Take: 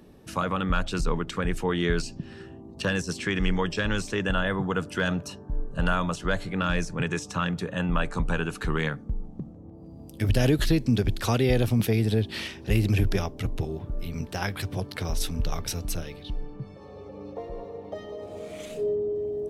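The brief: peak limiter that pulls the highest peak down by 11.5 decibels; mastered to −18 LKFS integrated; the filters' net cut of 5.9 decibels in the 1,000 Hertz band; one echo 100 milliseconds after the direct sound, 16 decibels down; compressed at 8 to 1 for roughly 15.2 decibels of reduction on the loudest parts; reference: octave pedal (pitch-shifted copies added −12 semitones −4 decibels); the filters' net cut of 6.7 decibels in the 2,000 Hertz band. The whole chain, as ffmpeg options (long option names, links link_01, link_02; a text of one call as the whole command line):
ffmpeg -i in.wav -filter_complex "[0:a]equalizer=frequency=1000:width_type=o:gain=-5.5,equalizer=frequency=2000:width_type=o:gain=-7,acompressor=threshold=-34dB:ratio=8,alimiter=level_in=9dB:limit=-24dB:level=0:latency=1,volume=-9dB,aecho=1:1:100:0.158,asplit=2[link_01][link_02];[link_02]asetrate=22050,aresample=44100,atempo=2,volume=-4dB[link_03];[link_01][link_03]amix=inputs=2:normalize=0,volume=24dB" out.wav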